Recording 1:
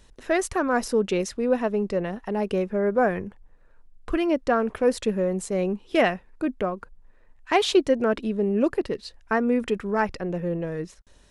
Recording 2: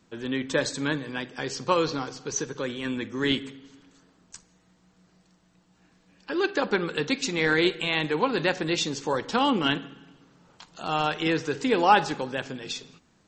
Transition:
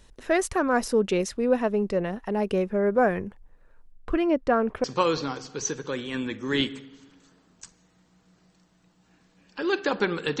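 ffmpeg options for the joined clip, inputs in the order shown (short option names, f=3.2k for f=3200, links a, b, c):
-filter_complex "[0:a]asettb=1/sr,asplit=3[a][b][c];[a]atrim=end=3.924[d];[b]atrim=start=3.92:end=4.84,asetpts=PTS-STARTPTS,afade=t=in:d=0.004:c=qsin,afade=t=out:st=0.916:d=0.004:c=qsin,lowpass=f=2.7k:p=1[e];[c]atrim=start=4.836[f];[d][e]acrossfade=d=0.004:c1=hsin:c2=qsin[g];[g][f]acrossfade=d=0.004:c1=qsin:c2=hsin,apad=whole_dur=10.4,atrim=end=10.4,atrim=end=4.842[h];[1:a]atrim=start=1.548:end=7.11[i];[h][i]acrossfade=d=0.004:c1=hsin:c2=hsin"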